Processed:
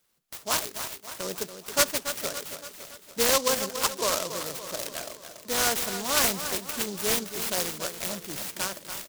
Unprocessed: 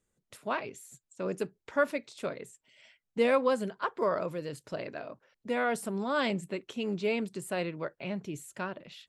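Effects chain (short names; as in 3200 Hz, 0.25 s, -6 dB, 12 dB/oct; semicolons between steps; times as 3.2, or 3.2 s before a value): tilt shelf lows -10 dB; on a send: feedback echo 0.283 s, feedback 54%, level -10 dB; on the sum: noise-modulated delay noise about 5200 Hz, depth 0.14 ms; gain +4.5 dB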